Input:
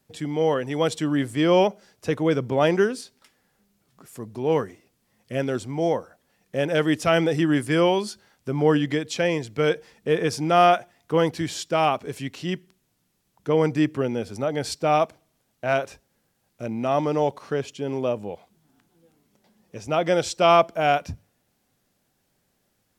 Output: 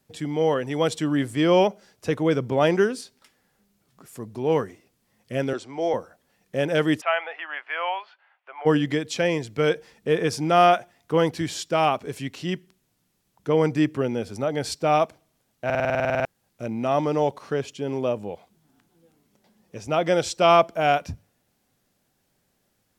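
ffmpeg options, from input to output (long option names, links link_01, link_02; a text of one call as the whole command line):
ffmpeg -i in.wav -filter_complex "[0:a]asettb=1/sr,asplit=3[link_01][link_02][link_03];[link_01]atrim=end=5.534[link_04];[link_02]atrim=start=5.53:end=5.94,asetpts=PTS-STARTPTS,afade=type=in:duration=0.004:curve=qsin,afade=type=out:start_time=0.406:duration=0.004:curve=qsin,acrossover=split=320 7300:gain=0.158 1 0.126[link_05][link_06][link_07];[link_05][link_06][link_07]amix=inputs=3:normalize=0[link_08];[link_03]atrim=start=5.936[link_09];[link_04][link_08]acrossfade=duration=0.004:curve1=hsin:curve2=qsin[link_10];[link_10][link_09]acrossfade=duration=0.004:curve1=qsin:curve2=hsin,asplit=3[link_11][link_12][link_13];[link_11]afade=type=out:start_time=7:duration=0.02[link_14];[link_12]asuperpass=centerf=1400:order=8:qfactor=0.65,afade=type=in:start_time=7:duration=0.02,afade=type=out:start_time=8.65:duration=0.02[link_15];[link_13]afade=type=in:start_time=8.65:duration=0.02[link_16];[link_14][link_15][link_16]amix=inputs=3:normalize=0,asplit=13[link_17][link_18][link_19][link_20][link_21][link_22][link_23][link_24][link_25][link_26][link_27][link_28][link_29];[link_17]atrim=end=15.702[link_30];[link_18]atrim=start=15.648:end=15.702[link_31];[link_19]atrim=start=15.648:end=15.702[link_32];[link_20]atrim=start=15.648:end=15.702[link_33];[link_21]atrim=start=15.648:end=15.702[link_34];[link_22]atrim=start=15.648:end=15.702[link_35];[link_23]atrim=start=15.648:end=15.702[link_36];[link_24]atrim=start=15.648:end=15.702[link_37];[link_25]atrim=start=15.648:end=15.702[link_38];[link_26]atrim=start=15.648:end=15.702[link_39];[link_27]atrim=start=15.648:end=15.702[link_40];[link_28]atrim=start=15.648:end=15.702[link_41];[link_29]atrim=start=16.248[link_42];[link_30][link_31]acrossfade=duration=0.004:curve1=hsin:curve2=hsin[link_43];[link_43][link_32]acrossfade=duration=0.004:curve1=hsin:curve2=hsin[link_44];[link_44][link_33]acrossfade=duration=0.004:curve1=hsin:curve2=hsin[link_45];[link_45][link_34]acrossfade=duration=0.004:curve1=hsin:curve2=hsin[link_46];[link_46][link_35]acrossfade=duration=0.004:curve1=hsin:curve2=hsin[link_47];[link_47][link_36]acrossfade=duration=0.004:curve1=hsin:curve2=hsin[link_48];[link_48][link_37]acrossfade=duration=0.004:curve1=hsin:curve2=hsin[link_49];[link_49][link_38]acrossfade=duration=0.004:curve1=hsin:curve2=hsin[link_50];[link_50][link_39]acrossfade=duration=0.004:curve1=hsin:curve2=hsin[link_51];[link_51][link_40]acrossfade=duration=0.004:curve1=hsin:curve2=hsin[link_52];[link_52][link_41]acrossfade=duration=0.004:curve1=hsin:curve2=hsin[link_53];[link_53][link_42]acrossfade=duration=0.004:curve1=hsin:curve2=hsin" out.wav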